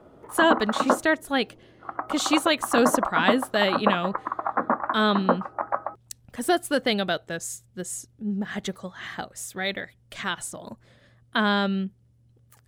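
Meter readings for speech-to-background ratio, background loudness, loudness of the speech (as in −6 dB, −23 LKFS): 1.0 dB, −27.5 LKFS, −26.5 LKFS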